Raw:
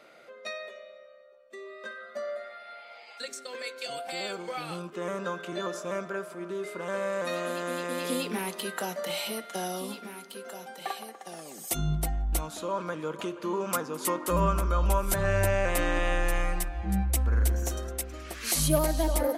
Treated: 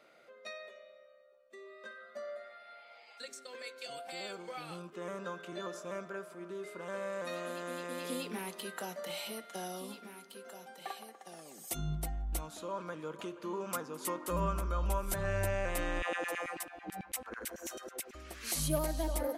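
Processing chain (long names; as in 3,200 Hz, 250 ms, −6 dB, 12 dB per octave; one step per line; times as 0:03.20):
0:16.02–0:18.15: auto-filter high-pass saw down 9.1 Hz 230–2,900 Hz
level −8 dB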